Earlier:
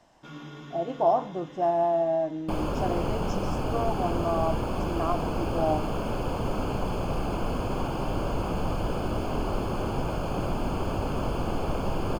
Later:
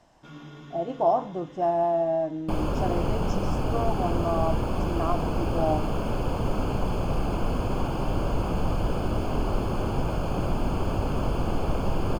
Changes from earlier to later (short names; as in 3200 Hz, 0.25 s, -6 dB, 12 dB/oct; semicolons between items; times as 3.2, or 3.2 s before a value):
first sound -3.0 dB; master: add low shelf 170 Hz +4.5 dB